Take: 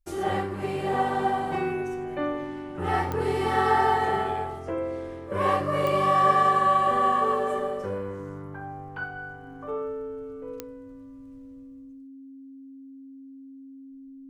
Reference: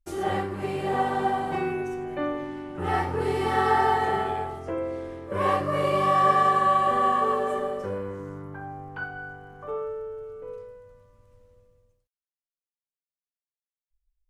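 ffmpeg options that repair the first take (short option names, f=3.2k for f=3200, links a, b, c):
-af "adeclick=t=4,bandreject=f=270:w=30"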